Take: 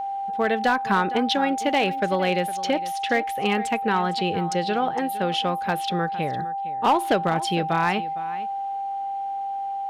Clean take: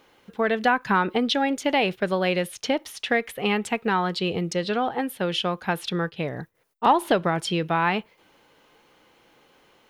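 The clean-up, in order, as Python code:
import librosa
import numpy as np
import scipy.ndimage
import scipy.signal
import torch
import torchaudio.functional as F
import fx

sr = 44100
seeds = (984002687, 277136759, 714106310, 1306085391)

y = fx.fix_declip(x, sr, threshold_db=-13.0)
y = fx.notch(y, sr, hz=790.0, q=30.0)
y = fx.fix_echo_inverse(y, sr, delay_ms=459, level_db=-16.0)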